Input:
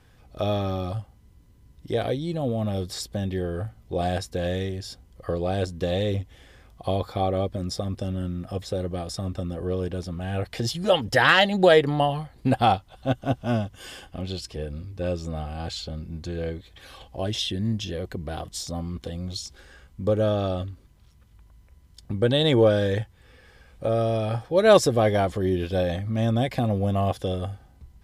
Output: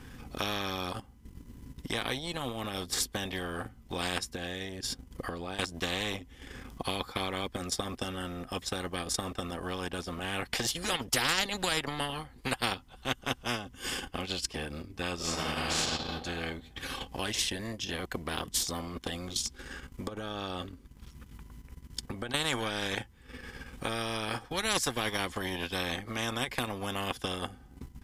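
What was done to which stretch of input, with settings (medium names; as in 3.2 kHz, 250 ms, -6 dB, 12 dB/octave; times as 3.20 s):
4.32–5.59 s: compression 3:1, threshold -36 dBFS
15.15–15.78 s: reverb throw, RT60 1.7 s, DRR -8 dB
20.07–22.34 s: compression 20:1, threshold -29 dBFS
whole clip: graphic EQ with 31 bands 100 Hz -8 dB, 250 Hz +9 dB, 630 Hz -12 dB, 4 kHz -4 dB; transient shaper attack +4 dB, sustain -11 dB; spectrum-flattening compressor 4:1; trim -8 dB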